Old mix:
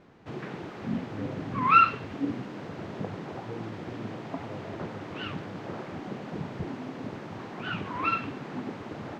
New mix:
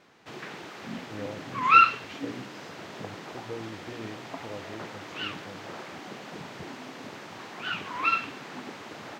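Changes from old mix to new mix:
speech +8.0 dB; master: add tilt +3.5 dB/oct

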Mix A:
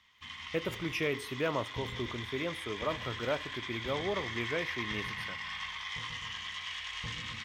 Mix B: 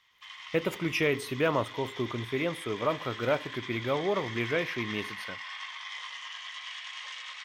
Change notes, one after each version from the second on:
speech +5.5 dB; background: add Chebyshev band-pass 600–9700 Hz, order 4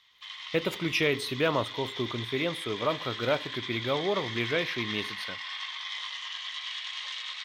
master: add bell 3900 Hz +10 dB 0.63 oct

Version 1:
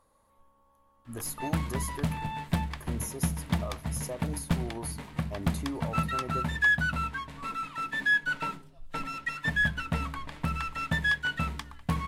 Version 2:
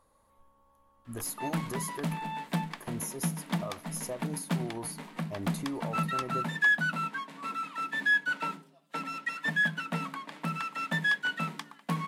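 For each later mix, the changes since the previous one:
background: add Chebyshev high-pass 160 Hz, order 8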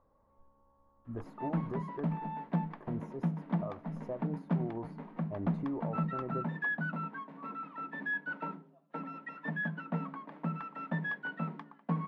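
master: add Bessel low-pass 840 Hz, order 2

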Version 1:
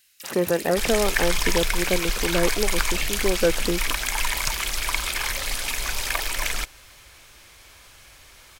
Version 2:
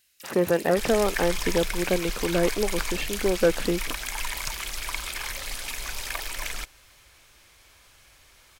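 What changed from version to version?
first sound -5.5 dB; second sound -6.5 dB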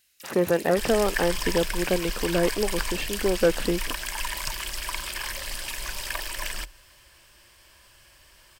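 second sound: add ripple EQ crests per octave 1.3, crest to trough 7 dB

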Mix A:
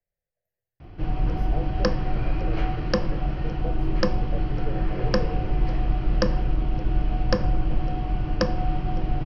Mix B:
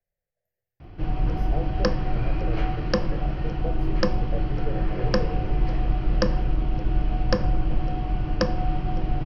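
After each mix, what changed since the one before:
speech: send +10.5 dB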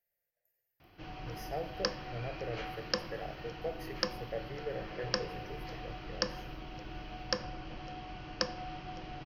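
background -9.0 dB; master: add tilt +3.5 dB/oct

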